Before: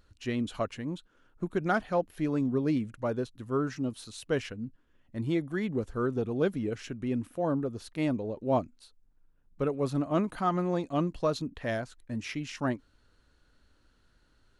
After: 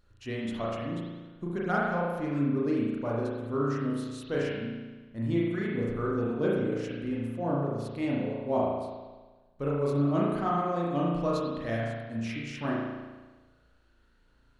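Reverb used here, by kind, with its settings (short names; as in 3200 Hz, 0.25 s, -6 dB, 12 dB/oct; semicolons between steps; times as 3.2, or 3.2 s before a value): spring tank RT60 1.3 s, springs 35 ms, chirp 70 ms, DRR -5 dB; gain -5 dB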